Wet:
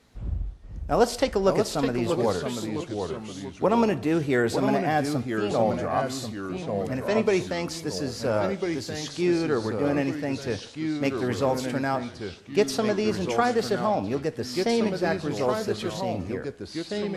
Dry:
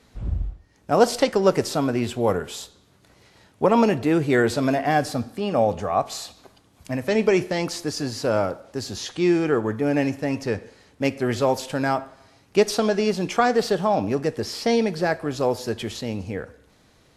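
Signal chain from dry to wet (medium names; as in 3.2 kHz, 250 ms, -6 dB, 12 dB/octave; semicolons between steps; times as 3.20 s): ever faster or slower copies 457 ms, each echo -2 st, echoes 3, each echo -6 dB; trim -4 dB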